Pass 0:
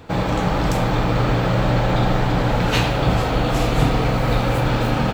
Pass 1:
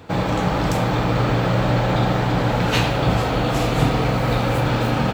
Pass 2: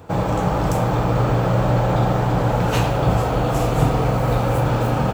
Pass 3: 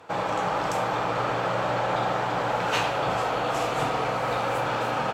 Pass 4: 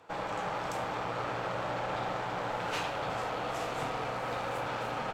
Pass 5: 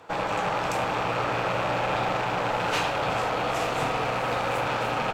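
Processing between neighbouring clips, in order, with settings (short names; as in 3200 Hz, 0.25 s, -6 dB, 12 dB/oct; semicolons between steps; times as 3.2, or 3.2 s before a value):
HPF 58 Hz
graphic EQ 250/2000/4000 Hz -5/-7/-9 dB; gain +2.5 dB
band-pass 2200 Hz, Q 0.5; gain +1 dB
tube stage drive 21 dB, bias 0.65; gain -5 dB
rattling part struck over -44 dBFS, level -32 dBFS; gain +8 dB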